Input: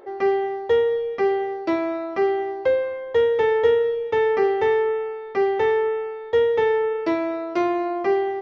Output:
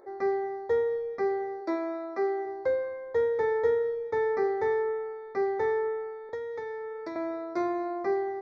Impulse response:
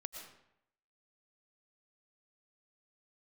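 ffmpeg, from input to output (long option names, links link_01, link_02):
-filter_complex "[0:a]asplit=3[link_01][link_02][link_03];[link_01]afade=type=out:start_time=1.6:duration=0.02[link_04];[link_02]highpass=frequency=240:width=0.5412,highpass=frequency=240:width=1.3066,afade=type=in:start_time=1.6:duration=0.02,afade=type=out:start_time=2.45:duration=0.02[link_05];[link_03]afade=type=in:start_time=2.45:duration=0.02[link_06];[link_04][link_05][link_06]amix=inputs=3:normalize=0,asettb=1/sr,asplit=3[link_07][link_08][link_09];[link_07]atrim=end=6.294[link_10];[link_08]atrim=start=6.29:end=7.16,asetpts=PTS-STARTPTS,afade=type=in:duration=0.004:curve=qsin,afade=type=out:start_time=0.866:duration=0.004:curve=qsin,acrossover=split=720|2300[link_11][link_12][link_13];[link_11]acompressor=threshold=-31dB:ratio=4[link_14];[link_12]acompressor=threshold=-37dB:ratio=4[link_15];[link_13]acompressor=threshold=-42dB:ratio=4[link_16];[link_14][link_15][link_16]amix=inputs=3:normalize=0[link_17];[link_09]atrim=start=7.156[link_18];[link_10][link_17]acrossfade=duration=0.004:curve1=hsin:curve2=qsin[link_19];[link_19][link_18]acrossfade=duration=0.004:curve1=qsin:curve2=hsin,asuperstop=centerf=2900:order=4:qfactor=1.6,volume=-7.5dB"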